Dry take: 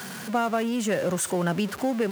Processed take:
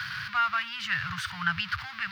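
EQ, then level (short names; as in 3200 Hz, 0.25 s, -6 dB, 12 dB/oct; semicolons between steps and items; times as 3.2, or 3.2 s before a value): elliptic band-stop 110–1300 Hz, stop band 60 dB; tone controls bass +3 dB, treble -15 dB; resonant high shelf 6000 Hz -8.5 dB, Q 3; +7.0 dB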